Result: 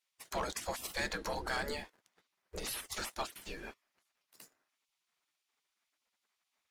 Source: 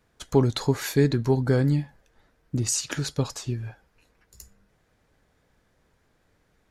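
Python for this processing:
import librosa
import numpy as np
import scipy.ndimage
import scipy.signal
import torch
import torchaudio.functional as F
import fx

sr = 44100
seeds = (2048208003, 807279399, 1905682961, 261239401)

y = fx.spec_gate(x, sr, threshold_db=-20, keep='weak')
y = fx.leveller(y, sr, passes=2)
y = y * 10.0 ** (-3.5 / 20.0)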